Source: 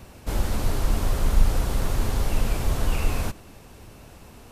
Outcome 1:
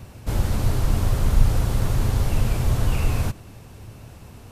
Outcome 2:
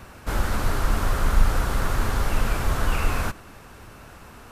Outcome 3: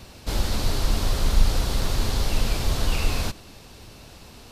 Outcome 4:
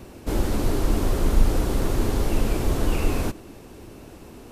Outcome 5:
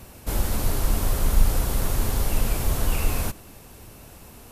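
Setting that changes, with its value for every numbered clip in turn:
parametric band, centre frequency: 110, 1,400, 4,300, 330, 13,000 Hertz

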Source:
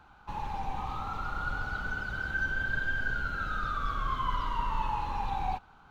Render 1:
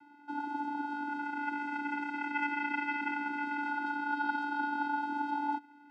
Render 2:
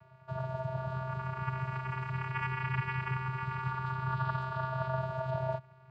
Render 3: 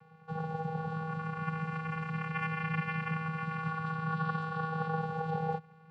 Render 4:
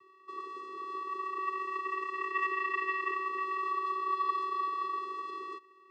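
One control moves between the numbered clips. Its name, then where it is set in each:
channel vocoder, frequency: 290, 130, 160, 380 Hertz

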